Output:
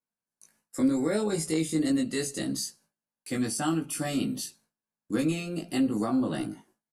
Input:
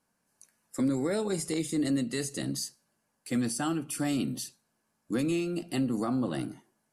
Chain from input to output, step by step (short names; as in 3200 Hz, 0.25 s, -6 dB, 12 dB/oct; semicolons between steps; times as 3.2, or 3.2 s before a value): gate with hold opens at -56 dBFS; doubler 19 ms -2 dB